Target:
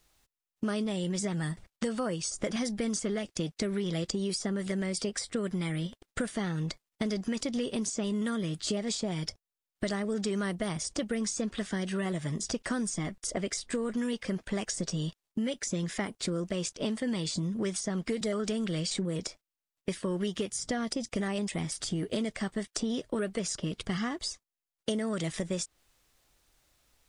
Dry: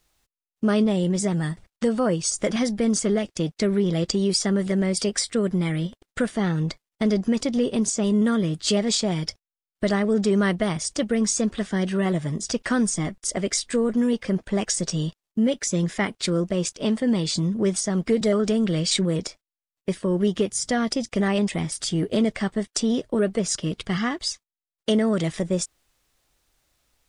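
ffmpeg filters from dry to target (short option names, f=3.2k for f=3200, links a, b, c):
-filter_complex "[0:a]acrossover=split=1200|5800[a][b][c];[a]acompressor=threshold=-31dB:ratio=4[d];[b]acompressor=threshold=-41dB:ratio=4[e];[c]acompressor=threshold=-39dB:ratio=4[f];[d][e][f]amix=inputs=3:normalize=0"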